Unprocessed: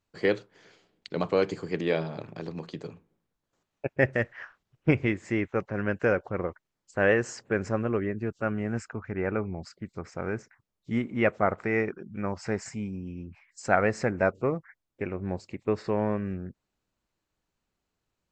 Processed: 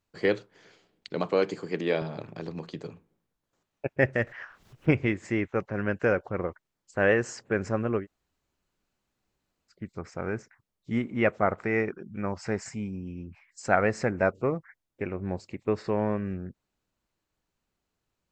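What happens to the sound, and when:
1.16–2.02 s: high-pass 160 Hz
4.27–5.27 s: upward compressor, threshold -38 dBFS
8.02–9.73 s: room tone, crossfade 0.10 s

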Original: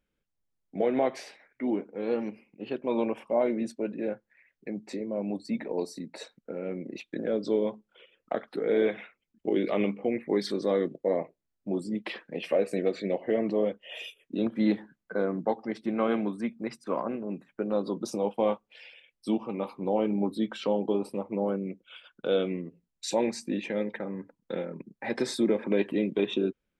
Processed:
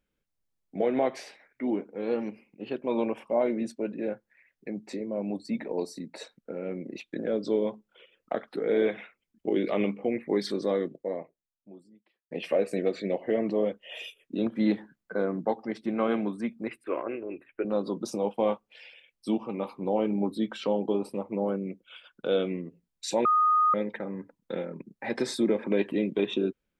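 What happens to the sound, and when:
10.63–12.31 s: fade out quadratic
16.68–17.65 s: FFT filter 100 Hz 0 dB, 190 Hz -17 dB, 340 Hz +4 dB, 900 Hz -6 dB, 1.8 kHz +5 dB, 2.6 kHz +9 dB, 5.8 kHz -26 dB, 9.4 kHz -3 dB
23.25–23.74 s: bleep 1.24 kHz -19 dBFS

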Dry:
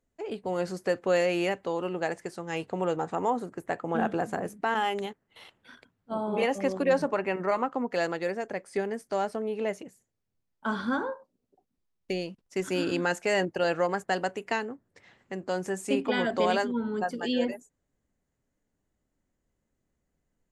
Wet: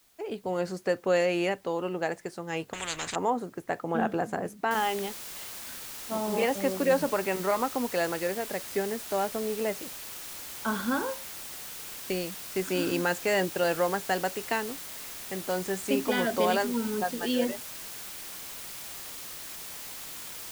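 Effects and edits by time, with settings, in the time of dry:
2.73–3.16 s: spectrum-flattening compressor 10:1
4.71 s: noise floor step -64 dB -41 dB

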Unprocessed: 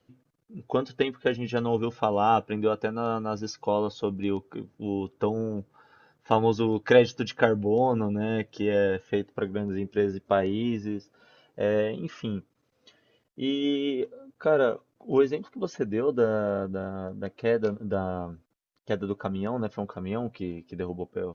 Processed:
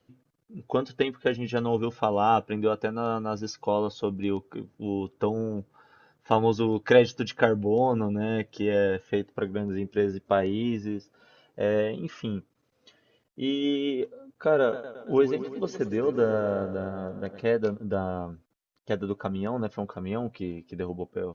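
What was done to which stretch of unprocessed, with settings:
14.61–17.46 s: modulated delay 113 ms, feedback 65%, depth 79 cents, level -13 dB

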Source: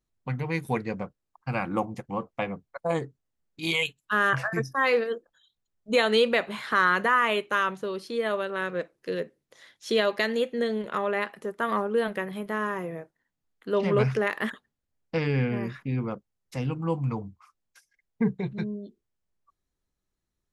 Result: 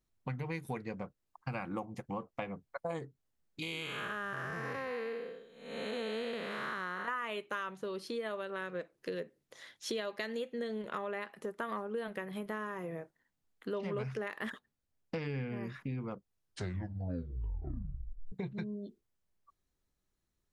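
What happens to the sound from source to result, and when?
3.62–7.08 s: spectral blur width 394 ms
14.46–15.15 s: waveshaping leveller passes 1
16.11 s: tape stop 2.21 s
whole clip: compression 4:1, threshold -37 dBFS

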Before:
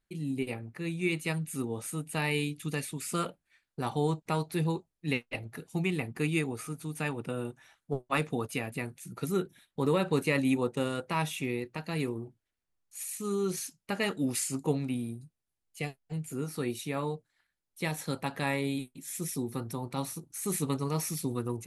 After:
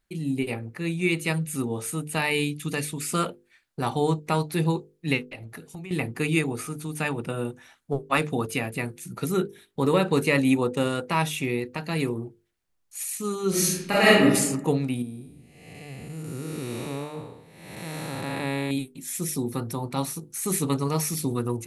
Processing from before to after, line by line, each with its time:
5.25–5.91 s: compression 12:1, threshold -41 dBFS
13.49–14.23 s: reverb throw, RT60 1 s, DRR -8.5 dB
15.02–18.71 s: spectral blur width 417 ms
whole clip: hum notches 50/100/150/200/250/300/350/400/450/500 Hz; trim +6.5 dB

